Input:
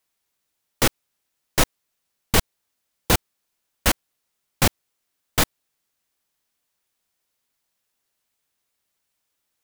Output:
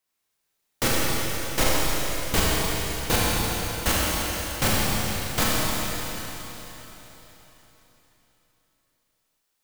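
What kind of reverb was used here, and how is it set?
Schroeder reverb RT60 3.9 s, combs from 29 ms, DRR -6.5 dB; trim -6 dB

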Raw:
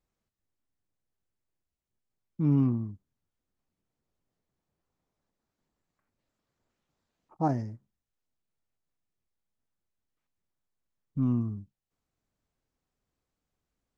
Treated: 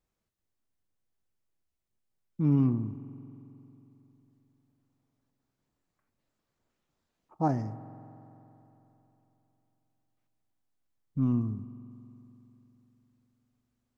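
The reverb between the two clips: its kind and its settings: spring tank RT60 3.4 s, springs 45 ms, chirp 70 ms, DRR 13.5 dB

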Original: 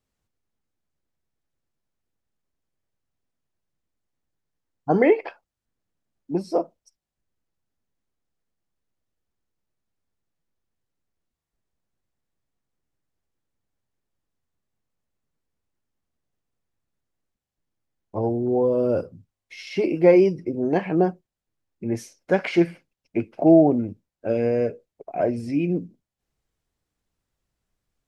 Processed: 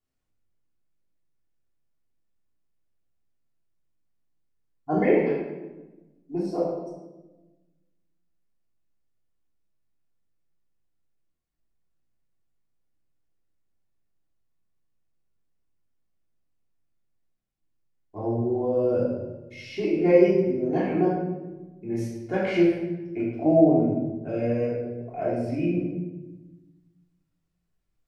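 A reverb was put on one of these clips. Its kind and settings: simulated room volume 600 m³, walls mixed, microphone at 3.3 m; trim -11.5 dB

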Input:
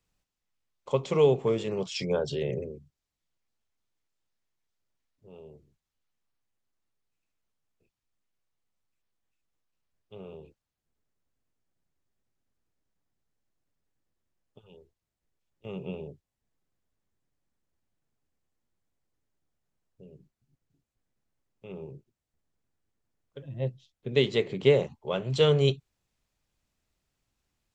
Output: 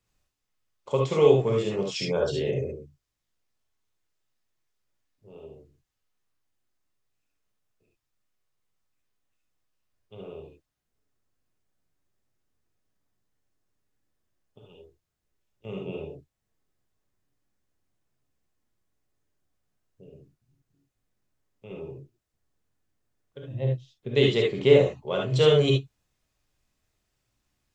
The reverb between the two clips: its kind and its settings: gated-style reverb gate 90 ms rising, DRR -1 dB

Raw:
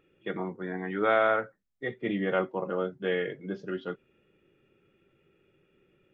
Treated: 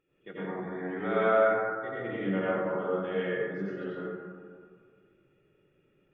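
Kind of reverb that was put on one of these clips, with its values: plate-style reverb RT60 2 s, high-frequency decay 0.3×, pre-delay 75 ms, DRR -9.5 dB; trim -11.5 dB

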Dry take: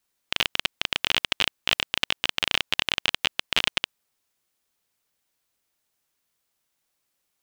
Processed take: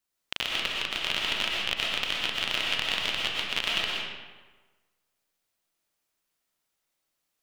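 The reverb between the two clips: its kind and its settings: algorithmic reverb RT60 1.3 s, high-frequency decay 0.7×, pre-delay 80 ms, DRR -3.5 dB; trim -7 dB

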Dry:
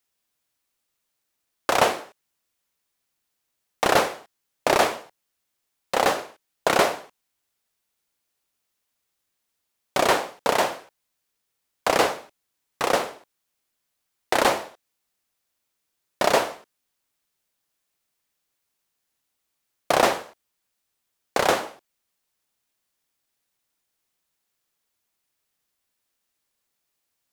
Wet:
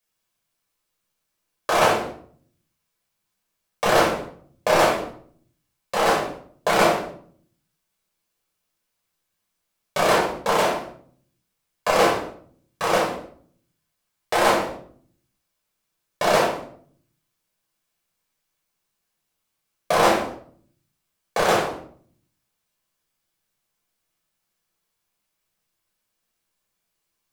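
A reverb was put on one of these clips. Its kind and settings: simulated room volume 630 m³, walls furnished, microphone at 5.6 m; trim -6 dB

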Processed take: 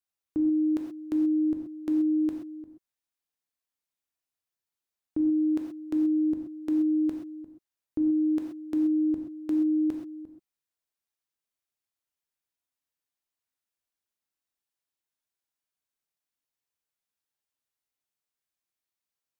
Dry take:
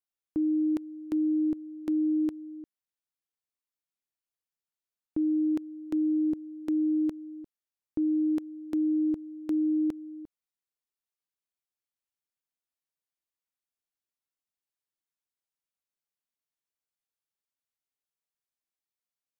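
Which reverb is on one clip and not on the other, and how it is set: gated-style reverb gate 150 ms flat, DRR 2 dB

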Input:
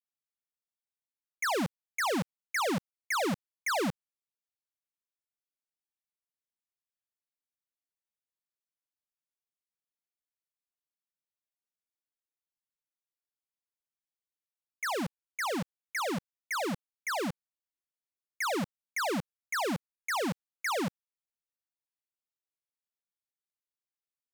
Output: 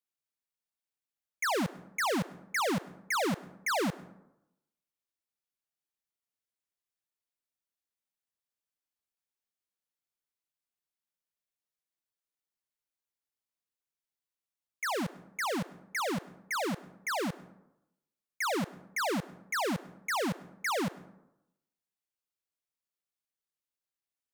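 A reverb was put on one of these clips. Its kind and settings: plate-style reverb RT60 0.87 s, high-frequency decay 0.45×, pre-delay 95 ms, DRR 19 dB

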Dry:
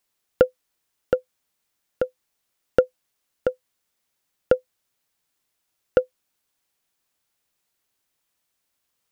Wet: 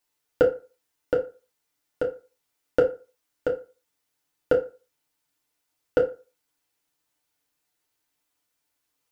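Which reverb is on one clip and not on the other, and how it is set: FDN reverb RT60 0.33 s, low-frequency decay 0.85×, high-frequency decay 0.7×, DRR -2 dB; trim -5 dB

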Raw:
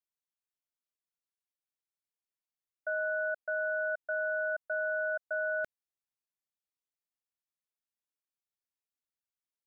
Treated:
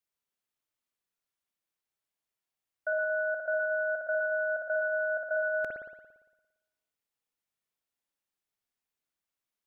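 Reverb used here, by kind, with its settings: spring tank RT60 1.1 s, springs 57 ms, chirp 60 ms, DRR 0.5 dB; trim +3 dB

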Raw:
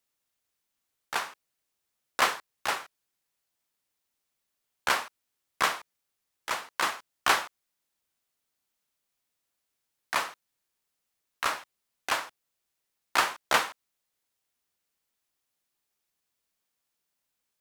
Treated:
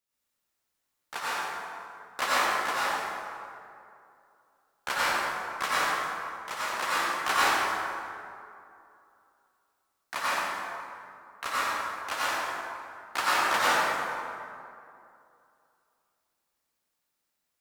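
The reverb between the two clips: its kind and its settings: plate-style reverb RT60 2.6 s, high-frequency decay 0.5×, pre-delay 75 ms, DRR -9.5 dB; trim -7 dB

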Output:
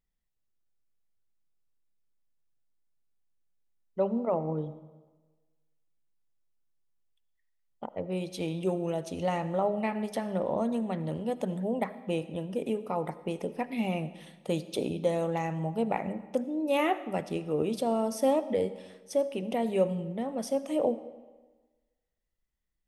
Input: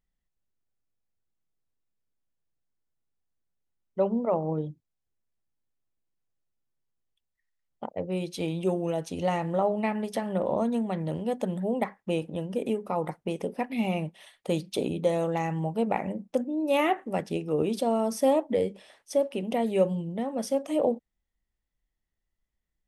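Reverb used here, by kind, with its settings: algorithmic reverb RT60 1.3 s, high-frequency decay 0.8×, pre-delay 35 ms, DRR 14.5 dB; trim -2.5 dB

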